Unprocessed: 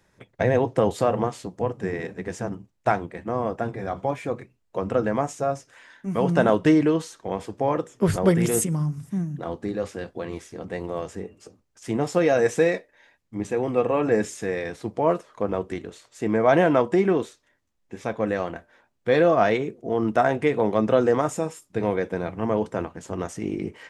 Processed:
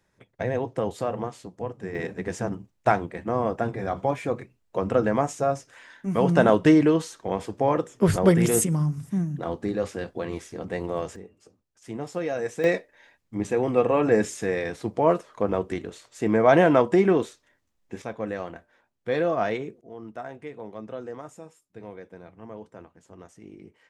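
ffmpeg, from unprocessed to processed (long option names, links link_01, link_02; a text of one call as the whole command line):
ffmpeg -i in.wav -af "asetnsamples=nb_out_samples=441:pad=0,asendcmd='1.95 volume volume 1dB;11.16 volume volume -9dB;12.64 volume volume 1dB;18.02 volume volume -6dB;19.81 volume volume -17dB',volume=-6.5dB" out.wav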